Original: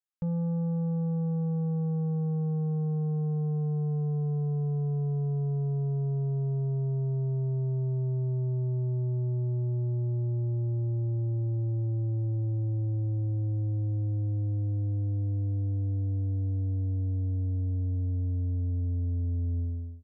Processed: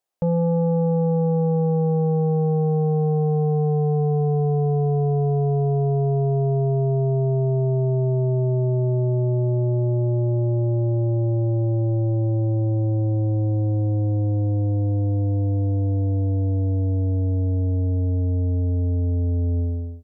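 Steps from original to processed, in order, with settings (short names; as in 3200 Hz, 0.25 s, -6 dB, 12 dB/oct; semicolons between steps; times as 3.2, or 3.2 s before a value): EQ curve 200 Hz 0 dB, 680 Hz +14 dB, 1300 Hz +1 dB; gain +7.5 dB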